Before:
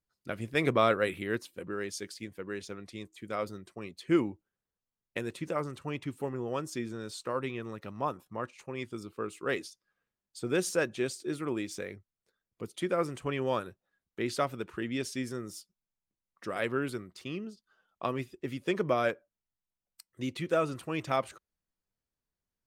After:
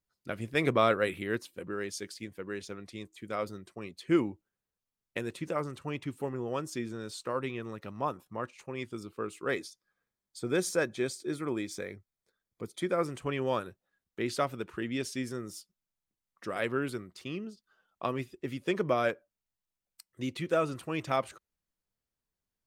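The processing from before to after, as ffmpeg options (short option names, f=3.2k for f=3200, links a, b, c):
-filter_complex "[0:a]asettb=1/sr,asplit=3[a][b][c];[a]atrim=end=9.494[d];[b]atrim=start=9.49:end=13.06,asetpts=PTS-STARTPTS,afade=t=in:d=0.004:c=qsin,afade=t=out:st=3.566:d=0.004:c=qsin,asuperstop=centerf=2800:order=4:qfactor=6.8[e];[c]atrim=start=13.056[f];[d][e]acrossfade=d=0.004:c1=hsin:c2=qsin[g];[g][f]acrossfade=d=0.004:c1=qsin:c2=hsin"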